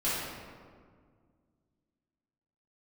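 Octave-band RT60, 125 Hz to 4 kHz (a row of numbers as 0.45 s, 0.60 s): 2.7 s, 2.6 s, 2.0 s, 1.7 s, 1.4 s, 1.0 s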